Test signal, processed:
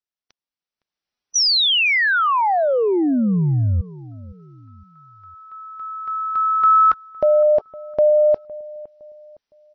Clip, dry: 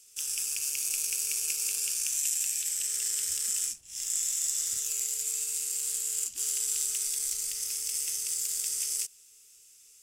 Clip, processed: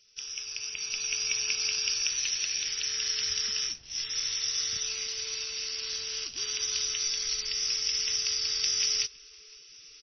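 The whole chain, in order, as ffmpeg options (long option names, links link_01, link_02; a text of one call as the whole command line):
ffmpeg -i in.wav -filter_complex "[0:a]highshelf=frequency=7300:gain=6,asplit=2[link_01][link_02];[link_02]adelay=511,lowpass=frequency=1000:poles=1,volume=-19dB,asplit=2[link_03][link_04];[link_04]adelay=511,lowpass=frequency=1000:poles=1,volume=0.42,asplit=2[link_05][link_06];[link_06]adelay=511,lowpass=frequency=1000:poles=1,volume=0.42[link_07];[link_03][link_05][link_07]amix=inputs=3:normalize=0[link_08];[link_01][link_08]amix=inputs=2:normalize=0,dynaudnorm=framelen=180:gausssize=11:maxgain=14.5dB" -ar 24000 -c:a libmp3lame -b:a 24k out.mp3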